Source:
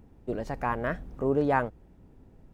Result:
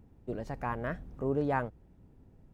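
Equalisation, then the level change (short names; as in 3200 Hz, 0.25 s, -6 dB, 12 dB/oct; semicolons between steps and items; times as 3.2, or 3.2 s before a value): bell 110 Hz +4.5 dB 1.8 oct; -6.0 dB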